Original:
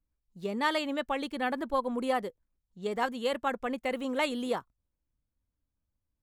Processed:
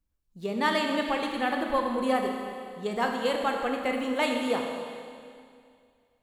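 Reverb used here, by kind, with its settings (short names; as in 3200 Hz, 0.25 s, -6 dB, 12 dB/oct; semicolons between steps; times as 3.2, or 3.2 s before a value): Schroeder reverb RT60 2.3 s, combs from 27 ms, DRR 2 dB; gain +2 dB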